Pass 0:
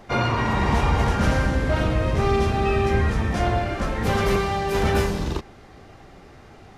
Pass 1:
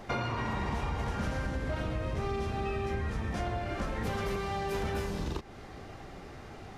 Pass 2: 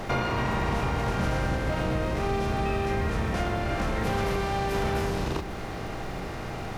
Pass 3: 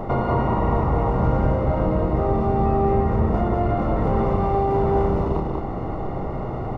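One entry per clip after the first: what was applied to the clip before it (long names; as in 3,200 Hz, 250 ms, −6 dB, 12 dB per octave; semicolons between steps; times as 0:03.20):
downward compressor 6 to 1, threshold −31 dBFS, peak gain reduction 14.5 dB
compressor on every frequency bin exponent 0.6; surface crackle 560 per second −48 dBFS; convolution reverb RT60 0.45 s, pre-delay 6 ms, DRR 10 dB; level +2.5 dB
Savitzky-Golay smoothing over 65 samples; single-tap delay 190 ms −3.5 dB; level +6 dB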